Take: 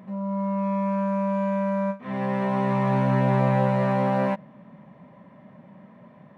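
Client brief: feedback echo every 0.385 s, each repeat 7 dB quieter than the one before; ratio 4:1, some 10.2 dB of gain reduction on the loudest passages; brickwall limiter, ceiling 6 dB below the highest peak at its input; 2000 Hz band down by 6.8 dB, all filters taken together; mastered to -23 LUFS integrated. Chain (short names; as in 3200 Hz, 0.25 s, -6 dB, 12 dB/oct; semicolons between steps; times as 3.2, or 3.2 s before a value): bell 2000 Hz -8.5 dB; compressor 4:1, threshold -30 dBFS; limiter -28.5 dBFS; feedback echo 0.385 s, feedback 45%, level -7 dB; gain +14 dB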